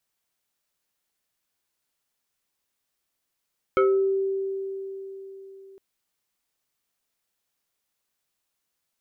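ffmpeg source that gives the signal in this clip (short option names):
-f lavfi -i "aevalsrc='0.168*pow(10,-3*t/3.99)*sin(2*PI*388*t+1.4*pow(10,-3*t/0.48)*sin(2*PI*2.34*388*t))':d=2.01:s=44100"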